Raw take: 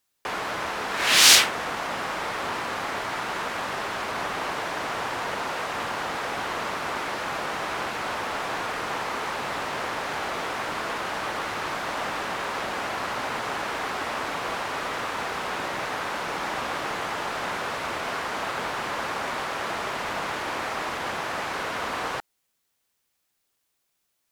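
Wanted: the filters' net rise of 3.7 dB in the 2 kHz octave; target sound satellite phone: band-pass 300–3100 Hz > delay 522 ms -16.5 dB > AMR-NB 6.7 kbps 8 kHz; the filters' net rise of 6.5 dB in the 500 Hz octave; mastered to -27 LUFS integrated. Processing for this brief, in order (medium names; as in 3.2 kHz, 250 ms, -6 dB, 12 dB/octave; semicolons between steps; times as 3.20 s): band-pass 300–3100 Hz; peaking EQ 500 Hz +8.5 dB; peaking EQ 2 kHz +5 dB; delay 522 ms -16.5 dB; trim +1.5 dB; AMR-NB 6.7 kbps 8 kHz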